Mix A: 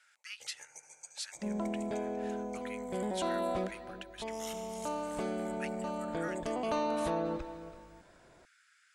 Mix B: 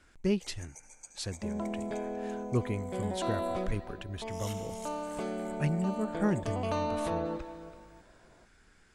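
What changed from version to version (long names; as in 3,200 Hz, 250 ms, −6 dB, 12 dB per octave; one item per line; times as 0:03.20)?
speech: remove Chebyshev high-pass filter 1,300 Hz, order 5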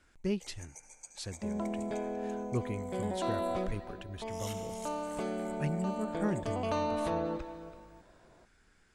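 speech −4.0 dB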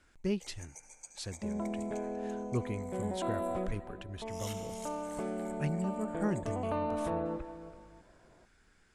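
second sound: add high-frequency loss of the air 480 metres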